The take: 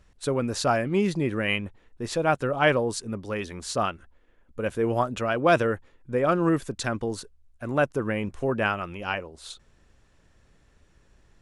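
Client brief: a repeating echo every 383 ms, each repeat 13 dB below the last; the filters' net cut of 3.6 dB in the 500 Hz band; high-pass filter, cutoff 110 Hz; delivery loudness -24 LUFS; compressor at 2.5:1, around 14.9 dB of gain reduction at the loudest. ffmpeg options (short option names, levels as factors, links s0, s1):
-af "highpass=110,equalizer=f=500:t=o:g=-4.5,acompressor=threshold=0.00891:ratio=2.5,aecho=1:1:383|766|1149:0.224|0.0493|0.0108,volume=6.31"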